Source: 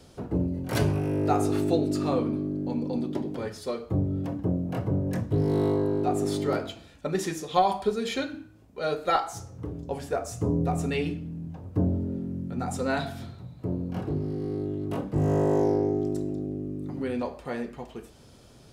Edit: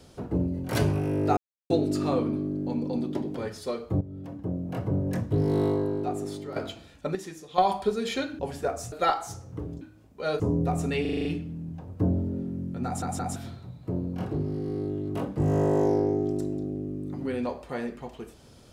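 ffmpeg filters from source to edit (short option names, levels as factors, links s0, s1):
-filter_complex "[0:a]asplit=20[s0][s1][s2][s3][s4][s5][s6][s7][s8][s9][s10][s11][s12][s13][s14][s15][s16][s17][s18][s19];[s0]atrim=end=1.37,asetpts=PTS-STARTPTS,afade=t=out:st=1.366:d=0.004:c=hsin[s20];[s1]atrim=start=1.37:end=1.7,asetpts=PTS-STARTPTS,volume=0[s21];[s2]atrim=start=1.7:end=4.01,asetpts=PTS-STARTPTS,afade=t=in:d=0.004:c=hsin,afade=t=out:st=2.306:d=0.004:c=hsin:silence=0.188365[s22];[s3]atrim=start=4.01:end=6.56,asetpts=PTS-STARTPTS,afade=t=in:d=0.98:silence=0.188365,afade=t=out:st=1.61:d=0.94:silence=0.223872[s23];[s4]atrim=start=6.56:end=7.152,asetpts=PTS-STARTPTS,afade=t=in:d=0.004:c=hsin:silence=0.223872[s24];[s5]atrim=start=7.148:end=7.582,asetpts=PTS-STARTPTS,volume=0.335[s25];[s6]atrim=start=7.578:end=8.392[s26];[s7]atrim=start=9.868:end=10.402[s27];[s8]atrim=start=8.978:end=9.872[s28];[s9]atrim=start=8.388:end=8.982[s29];[s10]atrim=start=10.398:end=11.052[s30];[s11]atrim=start=11.008:end=11.052[s31];[s12]atrim=start=11.008:end=11.052[s32];[s13]atrim=start=11.008:end=11.052[s33];[s14]atrim=start=11.008:end=11.052[s34];[s15]atrim=start=11.008:end=11.052[s35];[s16]atrim=start=11.008:end=12.782[s36];[s17]atrim=start=12.608:end=12.782[s37];[s18]atrim=start=12.608:end=12.782[s38];[s19]atrim=start=13.118[s39];[s20][s21][s22][s23][s24]concat=n=5:v=0:a=1[s40];[s40][s25]acrossfade=d=0.004:c1=hsin:c2=hsin[s41];[s41][s26]acrossfade=d=0.004:c1=hsin:c2=hsin[s42];[s42][s27]acrossfade=d=0.004:c1=hsin:c2=hsin[s43];[s43][s28]acrossfade=d=0.004:c1=hsin:c2=hsin[s44];[s44][s29]acrossfade=d=0.004:c1=hsin:c2=hsin[s45];[s45][s30]acrossfade=d=0.004:c1=hsin:c2=hsin[s46];[s46][s31]acrossfade=d=0.004:c1=hsin:c2=hsin[s47];[s47][s32]acrossfade=d=0.004:c1=hsin:c2=hsin[s48];[s48][s33]acrossfade=d=0.004:c1=hsin:c2=hsin[s49];[s49][s34]acrossfade=d=0.004:c1=hsin:c2=hsin[s50];[s50][s35]acrossfade=d=0.004:c1=hsin:c2=hsin[s51];[s51][s36]acrossfade=d=0.004:c1=hsin:c2=hsin[s52];[s52][s37]acrossfade=d=0.004:c1=hsin:c2=hsin[s53];[s53][s38]acrossfade=d=0.004:c1=hsin:c2=hsin[s54];[s54][s39]acrossfade=d=0.004:c1=hsin:c2=hsin"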